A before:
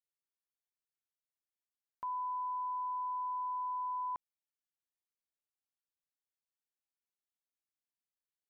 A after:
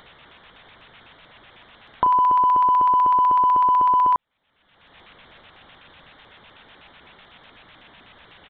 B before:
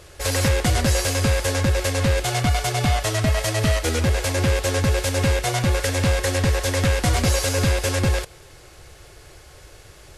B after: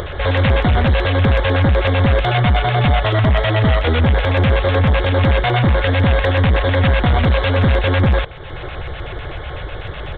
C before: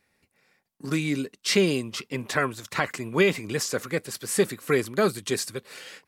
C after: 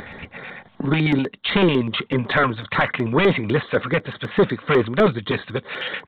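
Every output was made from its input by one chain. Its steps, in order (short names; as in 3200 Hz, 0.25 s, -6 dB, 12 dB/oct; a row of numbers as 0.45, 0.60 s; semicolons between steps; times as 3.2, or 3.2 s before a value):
upward compressor, threshold -29 dBFS; soft clip -22.5 dBFS; downsampling 8000 Hz; LFO notch square 8 Hz 350–2600 Hz; normalise peaks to -6 dBFS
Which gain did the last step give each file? +17.5, +12.5, +12.5 dB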